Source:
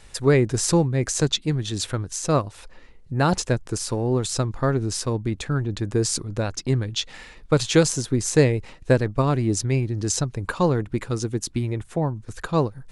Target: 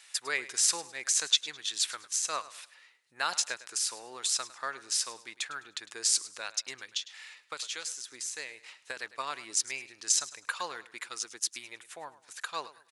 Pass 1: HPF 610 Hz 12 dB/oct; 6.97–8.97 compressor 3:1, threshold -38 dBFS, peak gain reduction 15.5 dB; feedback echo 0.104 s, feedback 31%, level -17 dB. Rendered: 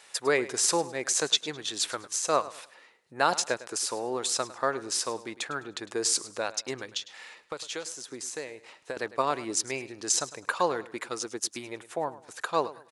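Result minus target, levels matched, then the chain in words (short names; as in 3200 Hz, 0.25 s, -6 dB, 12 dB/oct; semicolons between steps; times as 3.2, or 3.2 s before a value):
500 Hz band +14.0 dB
HPF 1700 Hz 12 dB/oct; 6.97–8.97 compressor 3:1, threshold -38 dBFS, peak gain reduction 12 dB; feedback echo 0.104 s, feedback 31%, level -17 dB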